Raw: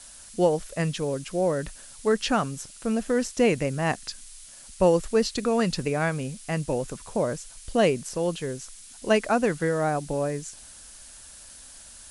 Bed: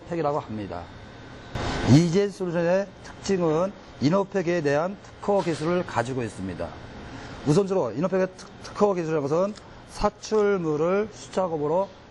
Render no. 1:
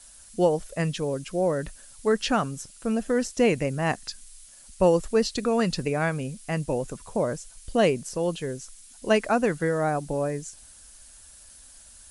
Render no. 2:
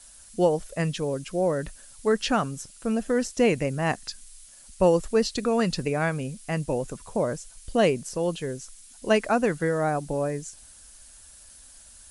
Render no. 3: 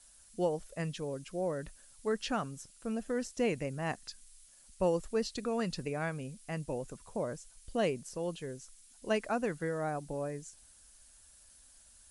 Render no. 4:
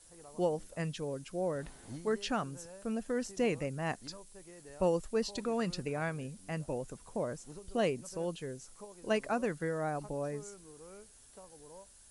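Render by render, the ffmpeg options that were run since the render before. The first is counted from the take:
ffmpeg -i in.wav -af "afftdn=noise_reduction=6:noise_floor=-47" out.wav
ffmpeg -i in.wav -af anull out.wav
ffmpeg -i in.wav -af "volume=-10dB" out.wav
ffmpeg -i in.wav -i bed.wav -filter_complex "[1:a]volume=-29.5dB[link_01];[0:a][link_01]amix=inputs=2:normalize=0" out.wav

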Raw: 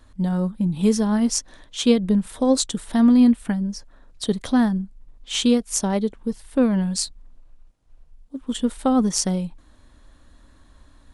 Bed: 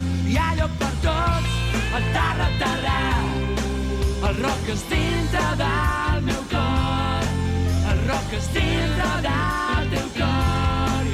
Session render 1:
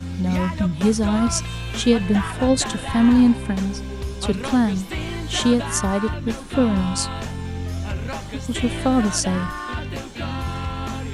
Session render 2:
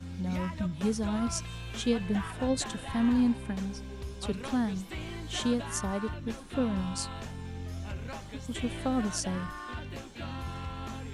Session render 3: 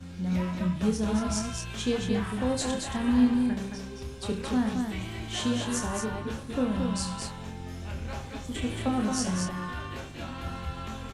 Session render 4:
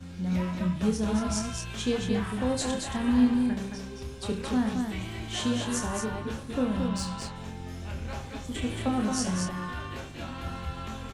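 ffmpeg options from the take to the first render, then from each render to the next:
ffmpeg -i in.wav -i bed.wav -filter_complex "[1:a]volume=-6.5dB[link_01];[0:a][link_01]amix=inputs=2:normalize=0" out.wav
ffmpeg -i in.wav -af "volume=-11dB" out.wav
ffmpeg -i in.wav -filter_complex "[0:a]asplit=2[link_01][link_02];[link_02]adelay=28,volume=-5.5dB[link_03];[link_01][link_03]amix=inputs=2:normalize=0,asplit=2[link_04][link_05];[link_05]aecho=0:1:72|137|222:0.266|0.112|0.596[link_06];[link_04][link_06]amix=inputs=2:normalize=0" out.wav
ffmpeg -i in.wav -filter_complex "[0:a]asettb=1/sr,asplit=3[link_01][link_02][link_03];[link_01]atrim=end=6.884[link_04];[link_02]atrim=start=6.88:end=7.36,asetpts=PTS-STARTPTS,afade=type=in:duration=0.004:curve=qsin,afade=type=out:start_time=0.476:duration=0.004:curve=qsin,adynamicsmooth=sensitivity=7:basefreq=6300[link_05];[link_03]atrim=start=7.356[link_06];[link_04][link_05]acrossfade=duration=0.004:curve1=hsin:curve2=qsin[link_07];[link_07][link_06]acrossfade=duration=0.004:curve1=qsin:curve2=hsin" out.wav

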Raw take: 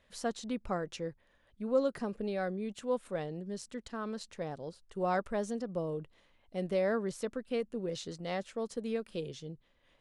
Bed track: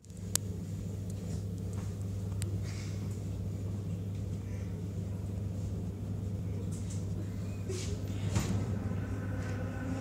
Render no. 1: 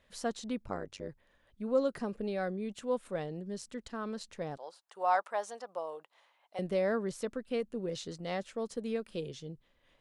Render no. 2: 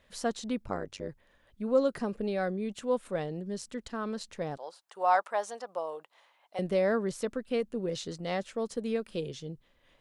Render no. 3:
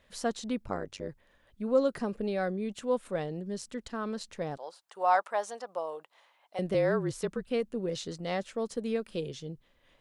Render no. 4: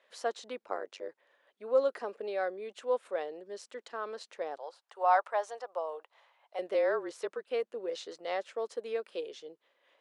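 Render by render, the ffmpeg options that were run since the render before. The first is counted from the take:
ffmpeg -i in.wav -filter_complex "[0:a]asplit=3[link_01][link_02][link_03];[link_01]afade=type=out:start_time=0.64:duration=0.02[link_04];[link_02]tremolo=f=97:d=1,afade=type=in:start_time=0.64:duration=0.02,afade=type=out:start_time=1.08:duration=0.02[link_05];[link_03]afade=type=in:start_time=1.08:duration=0.02[link_06];[link_04][link_05][link_06]amix=inputs=3:normalize=0,asettb=1/sr,asplit=3[link_07][link_08][link_09];[link_07]atrim=end=4.574[link_10];[link_08]atrim=start=4.57:end=6.59,asetpts=PTS-STARTPTS,afade=type=in:duration=0.004:curve=qsin,afade=type=out:start_time=2.016:duration=0.004:curve=qsin,highpass=frequency=820:width_type=q:width=2.3[link_11];[link_09]atrim=start=6.586[link_12];[link_10][link_11]acrossfade=duration=0.004:curve1=hsin:curve2=qsin[link_13];[link_13][link_12]acrossfade=duration=0.004:curve1=qsin:curve2=hsin" out.wav
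ffmpeg -i in.wav -af "volume=3.5dB" out.wav
ffmpeg -i in.wav -filter_complex "[0:a]asettb=1/sr,asplit=3[link_01][link_02][link_03];[link_01]atrim=end=6.744[link_04];[link_02]atrim=start=6.74:end=7.47,asetpts=PTS-STARTPTS,afade=type=in:duration=0.004:curve=qsin,afade=type=out:start_time=0.726:duration=0.004:curve=qsin,afreqshift=-36[link_05];[link_03]atrim=start=7.466[link_06];[link_04][link_05]acrossfade=duration=0.004:curve1=hsin:curve2=qsin[link_07];[link_07][link_06]acrossfade=duration=0.004:curve1=qsin:curve2=hsin" out.wav
ffmpeg -i in.wav -af "highpass=frequency=410:width=0.5412,highpass=frequency=410:width=1.3066,aemphasis=mode=reproduction:type=50kf" out.wav

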